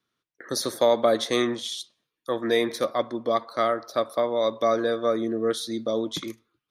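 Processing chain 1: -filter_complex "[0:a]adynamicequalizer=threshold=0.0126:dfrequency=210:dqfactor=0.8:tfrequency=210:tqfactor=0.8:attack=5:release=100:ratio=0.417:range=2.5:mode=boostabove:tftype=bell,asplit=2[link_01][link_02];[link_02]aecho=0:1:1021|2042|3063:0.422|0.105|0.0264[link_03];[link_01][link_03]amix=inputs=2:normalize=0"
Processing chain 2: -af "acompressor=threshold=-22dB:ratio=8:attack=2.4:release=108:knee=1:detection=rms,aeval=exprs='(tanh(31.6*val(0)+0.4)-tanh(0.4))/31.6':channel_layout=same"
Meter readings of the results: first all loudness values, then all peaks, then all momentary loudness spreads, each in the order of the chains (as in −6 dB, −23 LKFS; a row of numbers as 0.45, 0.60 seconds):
−23.5, −35.5 LKFS; −8.0, −27.0 dBFS; 7, 5 LU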